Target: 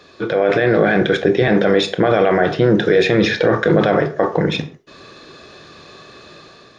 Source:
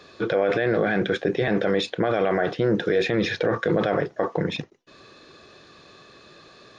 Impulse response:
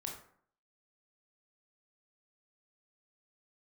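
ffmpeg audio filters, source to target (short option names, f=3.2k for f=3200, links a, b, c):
-filter_complex "[0:a]dynaudnorm=f=170:g=5:m=6dB,asplit=2[a][b];[1:a]atrim=start_sample=2205,afade=t=out:st=0.22:d=0.01,atrim=end_sample=10143[c];[b][c]afir=irnorm=-1:irlink=0,volume=-2dB[d];[a][d]amix=inputs=2:normalize=0,volume=-1dB"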